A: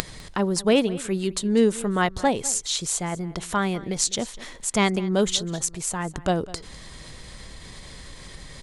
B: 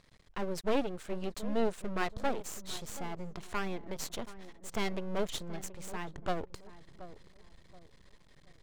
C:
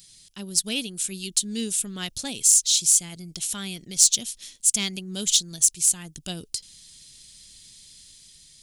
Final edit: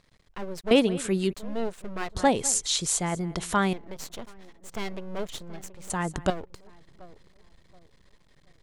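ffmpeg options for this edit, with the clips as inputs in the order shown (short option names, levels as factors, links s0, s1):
-filter_complex "[0:a]asplit=3[s0][s1][s2];[1:a]asplit=4[s3][s4][s5][s6];[s3]atrim=end=0.712[s7];[s0]atrim=start=0.708:end=1.332[s8];[s4]atrim=start=1.328:end=2.152[s9];[s1]atrim=start=2.148:end=3.732[s10];[s5]atrim=start=3.728:end=5.902[s11];[s2]atrim=start=5.898:end=6.302[s12];[s6]atrim=start=6.298[s13];[s7][s8]acrossfade=d=0.004:c1=hsin:c2=hsin[s14];[s14][s9]acrossfade=d=0.004:c1=hsin:c2=hsin[s15];[s15][s10]acrossfade=d=0.004:c1=hsin:c2=hsin[s16];[s16][s11]acrossfade=d=0.004:c1=hsin:c2=hsin[s17];[s17][s12]acrossfade=d=0.004:c1=hsin:c2=hsin[s18];[s18][s13]acrossfade=d=0.004:c1=hsin:c2=hsin"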